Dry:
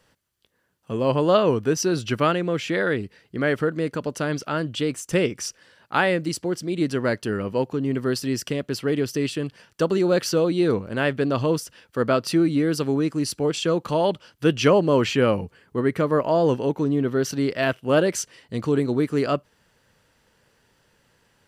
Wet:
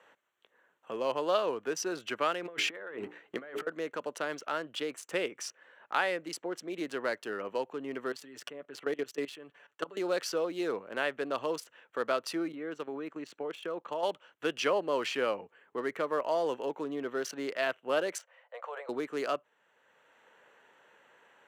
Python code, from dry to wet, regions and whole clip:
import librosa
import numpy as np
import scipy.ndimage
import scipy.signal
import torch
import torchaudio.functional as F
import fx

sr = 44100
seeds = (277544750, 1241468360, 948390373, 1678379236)

y = fx.chain(x, sr, fx.hum_notches(base_hz=60, count=7),
    fx.leveller(passes=1),
    fx.over_compress(threshold_db=-27.0, ratio=-0.5), at=(2.42, 3.67))
y = fx.chain(y, sr, fx.comb(ms=6.9, depth=0.68),
    fx.level_steps(step_db=18), at=(8.12, 9.97))
y = fx.chain(y, sr, fx.air_absorb(metres=78.0),
    fx.level_steps(step_db=13), at=(12.52, 14.03))
y = fx.chain(y, sr, fx.cheby1_highpass(hz=520.0, order=6),
    fx.tilt_eq(slope=-3.5), at=(18.18, 18.89))
y = fx.wiener(y, sr, points=9)
y = scipy.signal.sosfilt(scipy.signal.butter(2, 530.0, 'highpass', fs=sr, output='sos'), y)
y = fx.band_squash(y, sr, depth_pct=40)
y = y * 10.0 ** (-6.0 / 20.0)